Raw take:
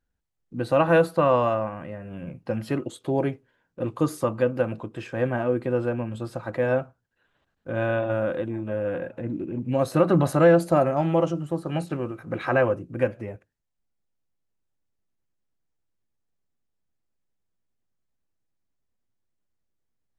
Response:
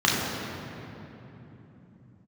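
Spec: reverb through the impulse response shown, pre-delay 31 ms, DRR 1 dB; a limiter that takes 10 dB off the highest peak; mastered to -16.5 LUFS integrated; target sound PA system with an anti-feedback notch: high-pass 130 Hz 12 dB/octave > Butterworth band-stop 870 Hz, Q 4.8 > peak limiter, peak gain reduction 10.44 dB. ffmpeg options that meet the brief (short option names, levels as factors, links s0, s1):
-filter_complex "[0:a]alimiter=limit=0.133:level=0:latency=1,asplit=2[s0][s1];[1:a]atrim=start_sample=2205,adelay=31[s2];[s1][s2]afir=irnorm=-1:irlink=0,volume=0.106[s3];[s0][s3]amix=inputs=2:normalize=0,highpass=130,asuperstop=centerf=870:order=8:qfactor=4.8,volume=5.01,alimiter=limit=0.422:level=0:latency=1"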